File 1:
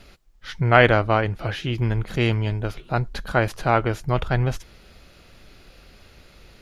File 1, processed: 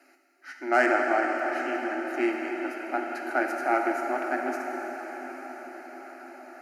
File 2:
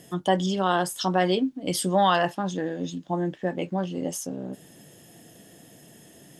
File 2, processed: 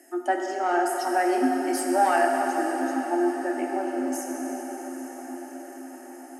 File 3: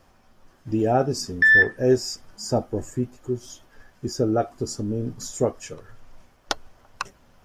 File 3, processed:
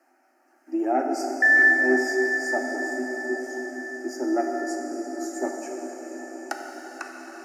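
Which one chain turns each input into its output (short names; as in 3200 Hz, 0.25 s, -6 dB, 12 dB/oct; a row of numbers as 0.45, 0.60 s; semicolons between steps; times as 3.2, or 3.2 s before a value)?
tube stage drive 9 dB, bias 0.4; rippled Chebyshev high-pass 250 Hz, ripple 6 dB; fixed phaser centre 700 Hz, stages 8; diffused feedback echo 0.887 s, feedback 63%, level -14 dB; plate-style reverb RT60 4.8 s, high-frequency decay 1×, DRR 0.5 dB; normalise peaks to -9 dBFS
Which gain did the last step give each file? +1.0, +5.5, +3.0 dB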